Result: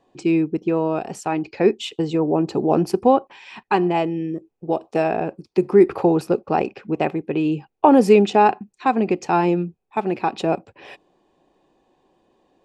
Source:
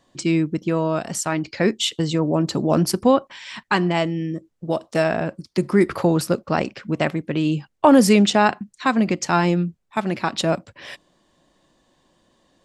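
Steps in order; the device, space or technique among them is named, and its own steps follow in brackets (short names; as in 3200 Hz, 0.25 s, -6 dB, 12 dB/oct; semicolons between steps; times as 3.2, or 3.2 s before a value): inside a helmet (high shelf 3800 Hz -8 dB; small resonant body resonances 410/770/2500 Hz, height 13 dB, ringing for 20 ms); gain -6 dB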